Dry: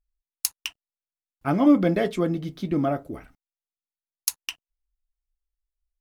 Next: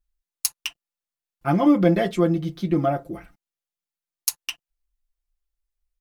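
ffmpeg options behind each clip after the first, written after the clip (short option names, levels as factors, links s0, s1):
-af "aecho=1:1:5.8:0.74"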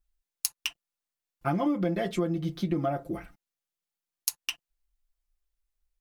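-af "acompressor=threshold=0.0562:ratio=5"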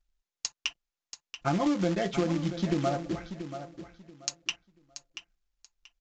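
-af "acrusher=bits=3:mode=log:mix=0:aa=0.000001,aecho=1:1:683|1366|2049:0.282|0.0648|0.0149,aresample=16000,aresample=44100"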